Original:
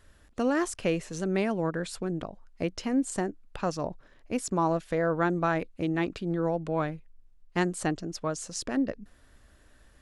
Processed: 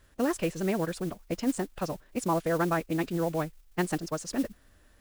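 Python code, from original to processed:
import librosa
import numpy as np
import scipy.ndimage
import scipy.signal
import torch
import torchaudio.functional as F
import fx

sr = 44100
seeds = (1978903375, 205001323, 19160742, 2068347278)

y = fx.mod_noise(x, sr, seeds[0], snr_db=18)
y = fx.stretch_vocoder(y, sr, factor=0.5)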